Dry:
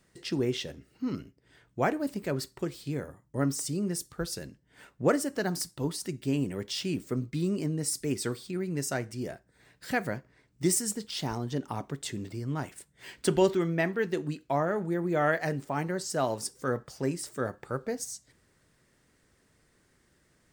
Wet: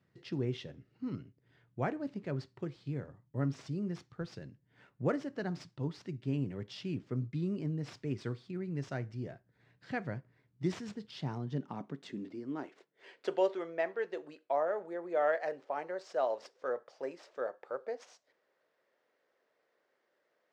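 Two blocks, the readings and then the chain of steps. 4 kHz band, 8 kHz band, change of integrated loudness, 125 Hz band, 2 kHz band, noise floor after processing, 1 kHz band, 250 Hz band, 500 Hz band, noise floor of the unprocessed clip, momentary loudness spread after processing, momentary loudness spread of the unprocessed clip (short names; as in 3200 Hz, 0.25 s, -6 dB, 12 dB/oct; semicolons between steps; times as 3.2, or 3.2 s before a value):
-13.0 dB, under -25 dB, -6.5 dB, -4.5 dB, -8.5 dB, -78 dBFS, -5.5 dB, -7.5 dB, -5.0 dB, -68 dBFS, 11 LU, 10 LU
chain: median filter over 5 samples; air absorption 110 m; high-pass sweep 110 Hz -> 550 Hz, 11.09–13.37; gain -8 dB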